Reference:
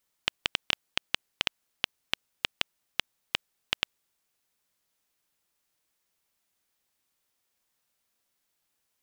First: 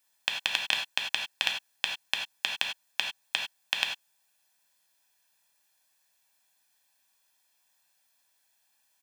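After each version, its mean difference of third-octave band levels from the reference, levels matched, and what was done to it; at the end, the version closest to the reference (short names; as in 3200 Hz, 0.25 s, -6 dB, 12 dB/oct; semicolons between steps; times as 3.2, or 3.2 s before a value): 5.0 dB: HPF 600 Hz 6 dB/oct; comb 1.2 ms, depth 65%; limiter -9 dBFS, peak gain reduction 3 dB; non-linear reverb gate 0.12 s flat, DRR 1.5 dB; gain +3 dB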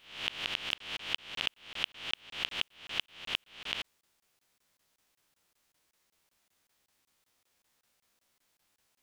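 7.5 dB: spectral swells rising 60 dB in 0.36 s; high shelf 8800 Hz -6.5 dB; reverse; compressor 16:1, threshold -34 dBFS, peak gain reduction 15.5 dB; reverse; crackling interface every 0.19 s, samples 1024, zero, from 0.78; gain +5 dB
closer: first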